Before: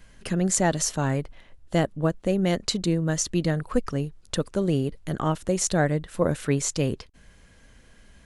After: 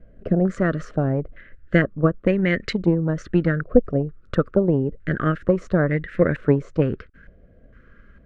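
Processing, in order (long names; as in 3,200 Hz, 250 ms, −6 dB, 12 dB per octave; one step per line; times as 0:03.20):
Butterworth band-reject 870 Hz, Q 1.1
transient designer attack +6 dB, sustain +2 dB
low-pass on a step sequencer 2.2 Hz 720–1,900 Hz
level +2 dB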